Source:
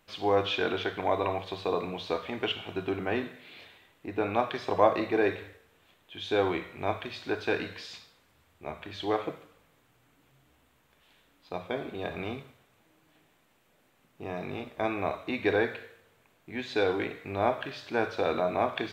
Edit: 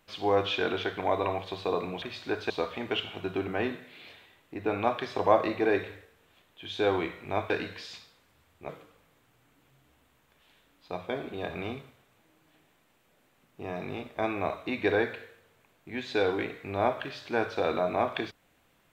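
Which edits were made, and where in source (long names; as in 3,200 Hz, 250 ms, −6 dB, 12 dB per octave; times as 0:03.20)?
0:07.02–0:07.50: move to 0:02.02
0:08.69–0:09.30: remove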